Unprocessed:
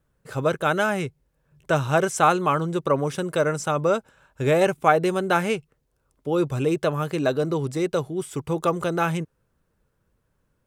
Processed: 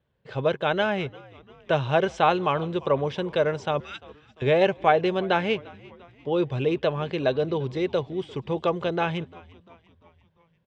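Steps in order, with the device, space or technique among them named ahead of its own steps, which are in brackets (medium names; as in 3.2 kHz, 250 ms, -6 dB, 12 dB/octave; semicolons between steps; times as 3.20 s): 3.80–4.42 s: steep high-pass 1.5 kHz; frequency-shifting delay pedal into a guitar cabinet (frequency-shifting echo 346 ms, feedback 55%, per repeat -82 Hz, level -22 dB; cabinet simulation 78–4200 Hz, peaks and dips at 160 Hz -4 dB, 290 Hz -6 dB, 1.3 kHz -9 dB, 3.2 kHz +5 dB); echo from a far wall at 29 m, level -30 dB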